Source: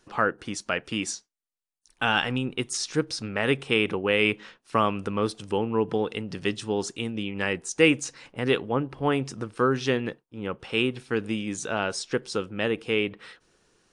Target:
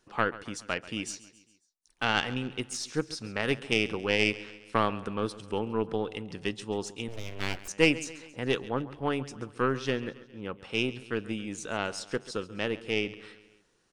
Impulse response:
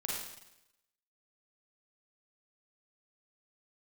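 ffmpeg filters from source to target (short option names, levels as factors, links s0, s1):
-filter_complex "[0:a]aeval=exprs='0.447*(cos(1*acos(clip(val(0)/0.447,-1,1)))-cos(1*PI/2))+0.0891*(cos(2*acos(clip(val(0)/0.447,-1,1)))-cos(2*PI/2))+0.0501*(cos(3*acos(clip(val(0)/0.447,-1,1)))-cos(3*PI/2))':c=same,aecho=1:1:136|272|408|544:0.133|0.0693|0.0361|0.0188,asettb=1/sr,asplit=3[s0][s1][s2];[s0]atrim=end=7.084[s3];[s1]atrim=start=7.08:end=7.68,asetpts=PTS-STARTPTS,afade=t=in:d=0.004:c=qsin,afade=t=out:st=0.596:d=0.004:c=qsin,aeval=exprs='abs(val(0))':c=same[s4];[s2]atrim=start=7.676[s5];[s3][s4]acrossfade=d=0.004:c1=hsin:c2=qsin[s6];[s6][s5]acrossfade=d=0.004:c1=qsin:c2=hsin,volume=0.75"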